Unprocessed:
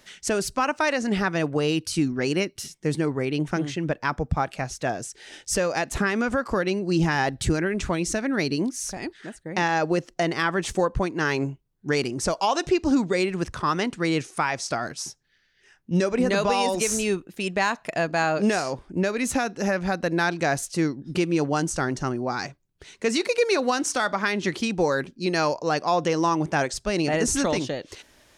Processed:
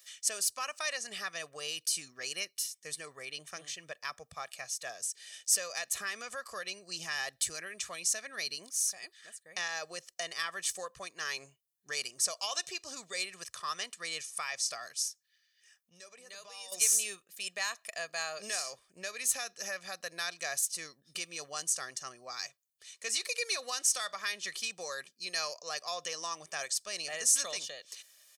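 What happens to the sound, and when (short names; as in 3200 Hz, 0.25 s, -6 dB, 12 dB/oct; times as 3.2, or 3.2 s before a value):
15.08–16.72 compressor 2:1, threshold -42 dBFS
whole clip: differentiator; comb 1.7 ms, depth 63%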